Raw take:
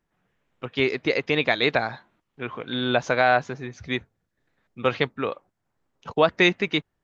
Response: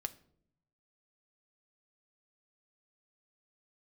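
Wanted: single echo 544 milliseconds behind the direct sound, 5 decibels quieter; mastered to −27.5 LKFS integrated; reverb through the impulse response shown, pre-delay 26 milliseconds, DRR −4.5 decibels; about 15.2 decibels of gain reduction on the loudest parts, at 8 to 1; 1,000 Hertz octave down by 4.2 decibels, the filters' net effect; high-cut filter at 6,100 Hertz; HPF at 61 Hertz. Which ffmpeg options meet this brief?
-filter_complex "[0:a]highpass=61,lowpass=6100,equalizer=frequency=1000:width_type=o:gain=-6.5,acompressor=threshold=-32dB:ratio=8,aecho=1:1:544:0.562,asplit=2[link_01][link_02];[1:a]atrim=start_sample=2205,adelay=26[link_03];[link_02][link_03]afir=irnorm=-1:irlink=0,volume=5.5dB[link_04];[link_01][link_04]amix=inputs=2:normalize=0,volume=4.5dB"

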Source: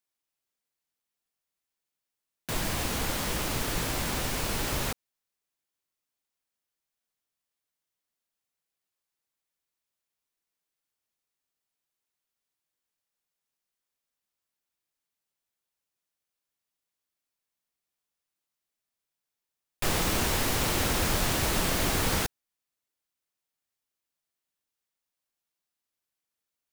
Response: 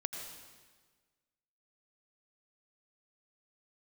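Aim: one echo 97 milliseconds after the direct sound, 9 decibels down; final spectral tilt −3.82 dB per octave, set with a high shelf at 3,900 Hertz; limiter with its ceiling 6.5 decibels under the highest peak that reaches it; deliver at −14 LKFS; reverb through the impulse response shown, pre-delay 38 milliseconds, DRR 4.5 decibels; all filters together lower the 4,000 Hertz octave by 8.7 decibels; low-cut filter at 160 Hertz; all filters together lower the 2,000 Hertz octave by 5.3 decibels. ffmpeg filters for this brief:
-filter_complex "[0:a]highpass=160,equalizer=frequency=2000:width_type=o:gain=-3.5,highshelf=frequency=3900:gain=-7.5,equalizer=frequency=4000:width_type=o:gain=-5.5,alimiter=limit=-24dB:level=0:latency=1,aecho=1:1:97:0.355,asplit=2[link_01][link_02];[1:a]atrim=start_sample=2205,adelay=38[link_03];[link_02][link_03]afir=irnorm=-1:irlink=0,volume=-5.5dB[link_04];[link_01][link_04]amix=inputs=2:normalize=0,volume=19dB"

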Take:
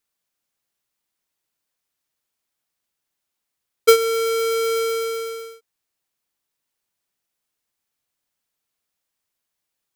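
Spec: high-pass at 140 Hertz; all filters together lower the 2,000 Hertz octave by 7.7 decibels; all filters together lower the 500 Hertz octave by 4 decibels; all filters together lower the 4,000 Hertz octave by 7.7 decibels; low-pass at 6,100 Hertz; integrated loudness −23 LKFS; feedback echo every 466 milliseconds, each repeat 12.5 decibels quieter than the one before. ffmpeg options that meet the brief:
ffmpeg -i in.wav -af "highpass=140,lowpass=6100,equalizer=frequency=500:width_type=o:gain=-4,equalizer=frequency=2000:width_type=o:gain=-6.5,equalizer=frequency=4000:width_type=o:gain=-7,aecho=1:1:466|932|1398:0.237|0.0569|0.0137,volume=2dB" out.wav

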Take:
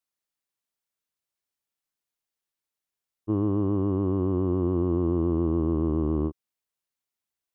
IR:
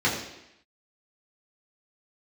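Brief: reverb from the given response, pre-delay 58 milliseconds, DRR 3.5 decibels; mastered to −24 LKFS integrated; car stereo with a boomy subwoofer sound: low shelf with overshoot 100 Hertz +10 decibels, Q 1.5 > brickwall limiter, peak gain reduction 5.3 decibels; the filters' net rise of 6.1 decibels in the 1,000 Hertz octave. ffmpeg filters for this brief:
-filter_complex "[0:a]equalizer=frequency=1000:width_type=o:gain=7,asplit=2[link_01][link_02];[1:a]atrim=start_sample=2205,adelay=58[link_03];[link_02][link_03]afir=irnorm=-1:irlink=0,volume=-18dB[link_04];[link_01][link_04]amix=inputs=2:normalize=0,lowshelf=frequency=100:width_type=q:width=1.5:gain=10,volume=-2.5dB,alimiter=limit=-15.5dB:level=0:latency=1"

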